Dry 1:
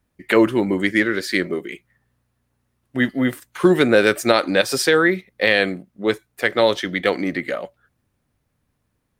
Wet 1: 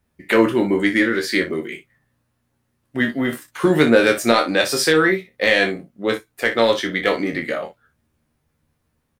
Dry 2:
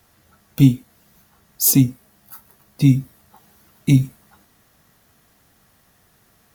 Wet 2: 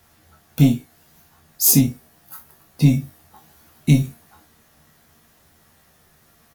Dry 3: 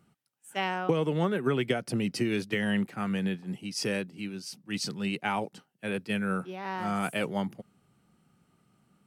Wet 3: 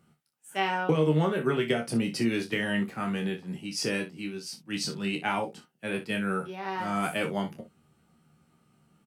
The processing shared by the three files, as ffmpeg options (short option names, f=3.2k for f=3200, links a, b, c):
-filter_complex "[0:a]asoftclip=type=tanh:threshold=-2.5dB,asplit=2[a][b];[b]adelay=13,volume=-8dB[c];[a][c]amix=inputs=2:normalize=0,aecho=1:1:26|60:0.501|0.237"